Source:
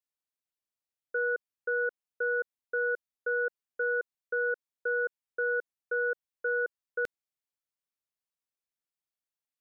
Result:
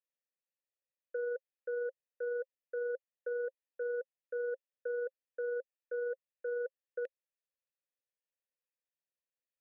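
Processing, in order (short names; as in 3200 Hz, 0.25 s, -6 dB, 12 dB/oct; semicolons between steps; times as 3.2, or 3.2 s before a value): vowel filter e; limiter -38 dBFS, peak gain reduction 7 dB; gain +6.5 dB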